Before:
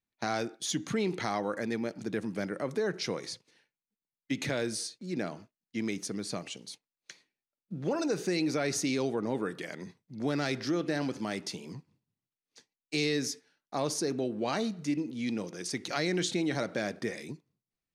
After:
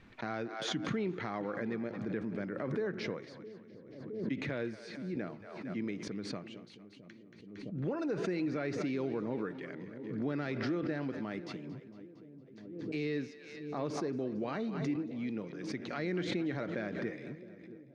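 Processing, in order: de-esser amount 80%; LPF 2100 Hz 12 dB/oct; bell 780 Hz -5 dB 0.81 oct; split-band echo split 520 Hz, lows 0.664 s, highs 0.229 s, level -14 dB; backwards sustainer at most 46 dB/s; gain -4 dB

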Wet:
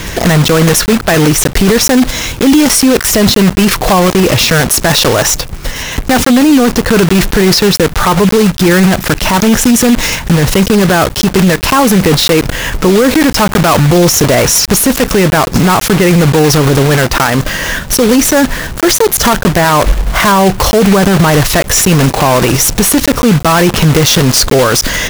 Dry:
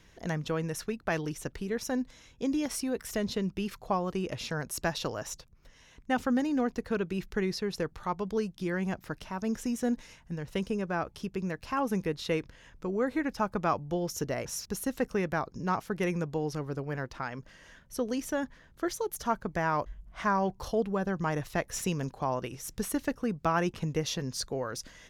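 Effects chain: block floating point 3-bit; in parallel at +1.5 dB: negative-ratio compressor -31 dBFS; on the sum: soft clip -20 dBFS, distortion -15 dB; maximiser +31.5 dB; gain -1 dB

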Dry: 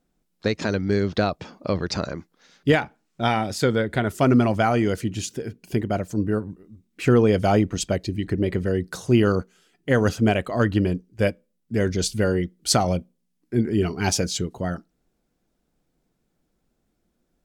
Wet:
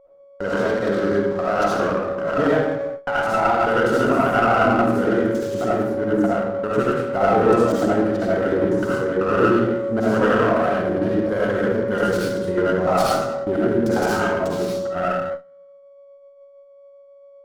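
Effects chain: slices in reverse order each 99 ms, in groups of 4; HPF 320 Hz 6 dB/oct; whine 560 Hz -28 dBFS; resonant high shelf 1800 Hz -9 dB, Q 3; notch 590 Hz, Q 12; on a send: tape echo 0.115 s, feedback 71%, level -17 dB, low-pass 1000 Hz; on the sum: limiter -14.5 dBFS, peak gain reduction 8.5 dB; digital reverb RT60 1 s, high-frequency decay 0.75×, pre-delay 30 ms, DRR -7.5 dB; gate with hold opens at -18 dBFS; running maximum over 5 samples

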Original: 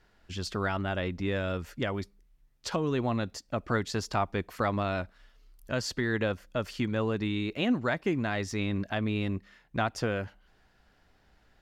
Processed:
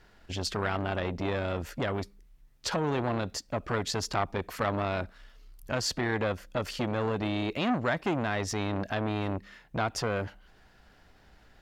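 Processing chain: de-esser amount 60%; in parallel at +3 dB: limiter -26.5 dBFS, peak gain reduction 11 dB; on the sum: core saturation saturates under 850 Hz; gain -1.5 dB

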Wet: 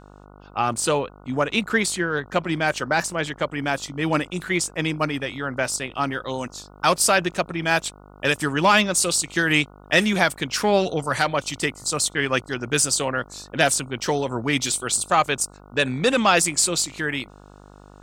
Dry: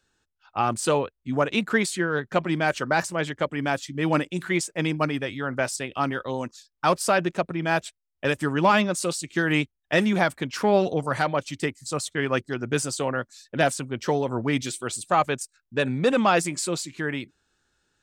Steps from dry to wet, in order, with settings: high shelf 2000 Hz +5.5 dB, from 6.23 s +11 dB; buzz 50 Hz, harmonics 29, -47 dBFS -3 dB/oct

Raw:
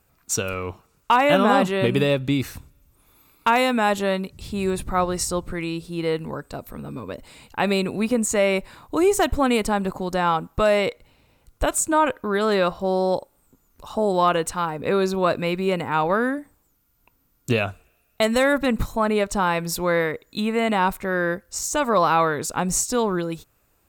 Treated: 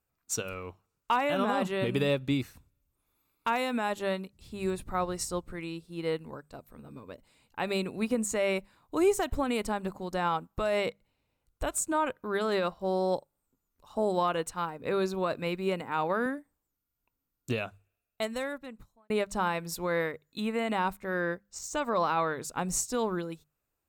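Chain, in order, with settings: notches 50/100/150/200 Hz; 17.65–19.1 fade out; limiter -12 dBFS, peak gain reduction 6.5 dB; 15.81–16.26 HPF 130 Hz; 21.2–22.38 bell 11000 Hz -15 dB 0.3 oct; upward expander 1.5:1, over -44 dBFS; gain -4.5 dB

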